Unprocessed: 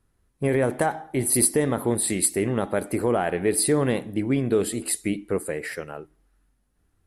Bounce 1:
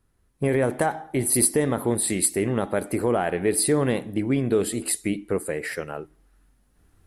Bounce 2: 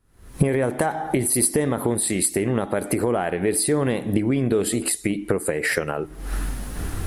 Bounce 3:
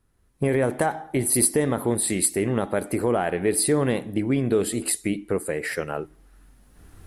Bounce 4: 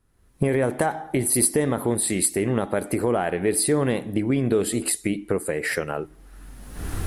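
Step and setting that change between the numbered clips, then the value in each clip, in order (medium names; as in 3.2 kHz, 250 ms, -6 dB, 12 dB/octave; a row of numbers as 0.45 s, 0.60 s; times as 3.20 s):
recorder AGC, rising by: 5.4 dB/s, 87 dB/s, 13 dB/s, 33 dB/s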